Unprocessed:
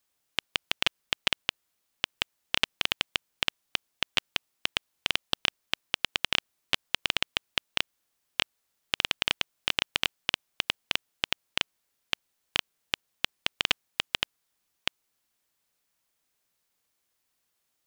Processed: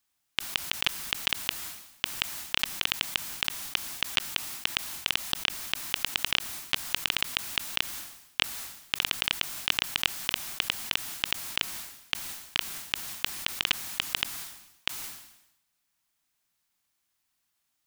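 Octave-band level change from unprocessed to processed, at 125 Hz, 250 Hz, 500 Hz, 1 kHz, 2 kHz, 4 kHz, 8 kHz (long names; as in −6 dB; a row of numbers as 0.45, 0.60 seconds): +1.0, −0.5, −5.0, 0.0, 0.0, +0.5, +7.5 decibels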